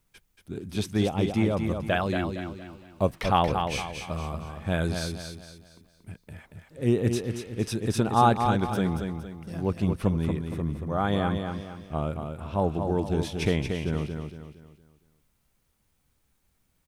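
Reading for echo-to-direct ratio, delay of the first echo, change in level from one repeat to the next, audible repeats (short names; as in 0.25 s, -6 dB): -5.5 dB, 0.231 s, -8.0 dB, 4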